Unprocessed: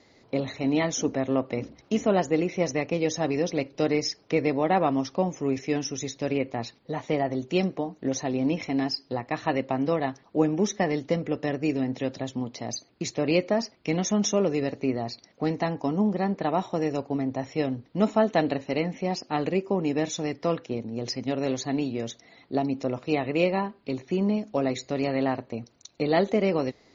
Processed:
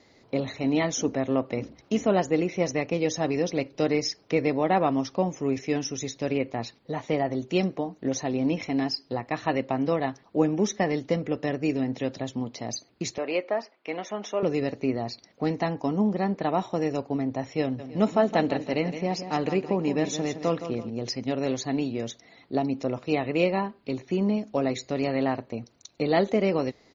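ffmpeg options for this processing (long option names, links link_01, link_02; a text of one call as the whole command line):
ffmpeg -i in.wav -filter_complex "[0:a]asettb=1/sr,asplit=3[link_01][link_02][link_03];[link_01]atrim=end=13.184[link_04];[link_02]atrim=start=13.18:end=14.43,asetpts=PTS-STARTPTS,afade=type=in:duration=0.004:curve=qsin,afade=type=out:start_time=1.246:duration=0.004:curve=qsin,highpass=500,lowpass=2600[link_05];[link_03]atrim=start=14.426[link_06];[link_04][link_05]acrossfade=duration=0.004:curve1=hsin:curve2=qsin[link_07];[link_07][link_06]acrossfade=duration=0.004:curve1=qsin:curve2=hsin,asplit=3[link_08][link_09][link_10];[link_08]afade=type=out:start_time=17.78:duration=0.02[link_11];[link_09]aecho=1:1:166|332|498|664:0.299|0.116|0.0454|0.0177,afade=type=in:start_time=17.78:duration=0.02,afade=type=out:start_time=20.89:duration=0.02[link_12];[link_10]afade=type=in:start_time=20.89:duration=0.02[link_13];[link_11][link_12][link_13]amix=inputs=3:normalize=0" out.wav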